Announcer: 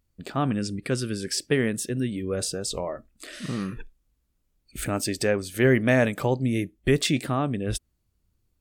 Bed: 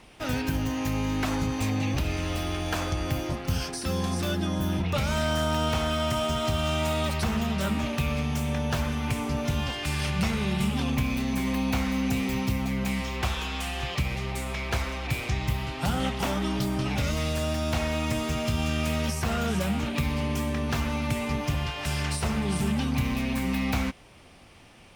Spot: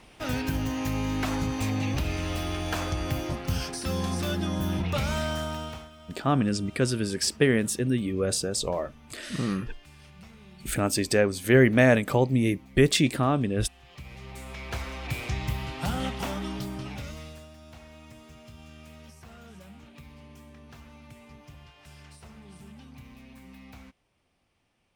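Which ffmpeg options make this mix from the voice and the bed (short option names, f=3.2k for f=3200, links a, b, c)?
-filter_complex "[0:a]adelay=5900,volume=1.5dB[a];[1:a]volume=19.5dB,afade=t=out:st=5.05:d=0.85:silence=0.0794328,afade=t=in:st=13.84:d=1.41:silence=0.0944061,afade=t=out:st=15.97:d=1.52:silence=0.11885[b];[a][b]amix=inputs=2:normalize=0"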